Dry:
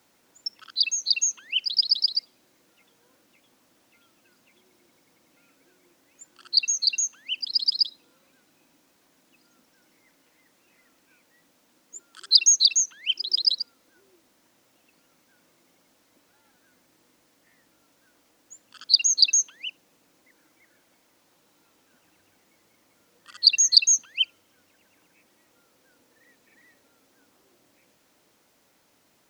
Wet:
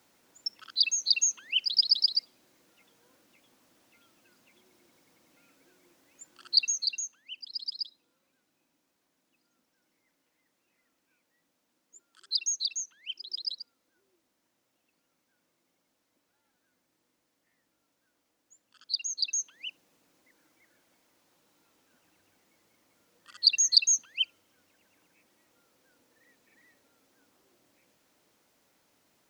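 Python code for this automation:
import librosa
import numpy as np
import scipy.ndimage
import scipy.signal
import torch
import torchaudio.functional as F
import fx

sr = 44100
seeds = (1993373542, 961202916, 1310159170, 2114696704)

y = fx.gain(x, sr, db=fx.line((6.55, -2.0), (7.21, -13.0), (19.19, -13.0), (19.67, -5.0)))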